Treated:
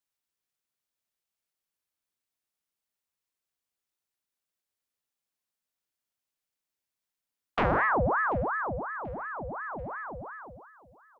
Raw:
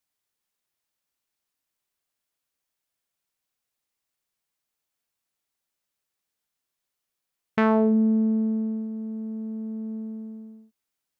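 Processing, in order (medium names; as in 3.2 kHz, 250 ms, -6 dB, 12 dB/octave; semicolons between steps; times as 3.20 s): feedback delay 736 ms, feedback 49%, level -23 dB; ring modulator with a swept carrier 900 Hz, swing 70%, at 2.8 Hz; trim -2.5 dB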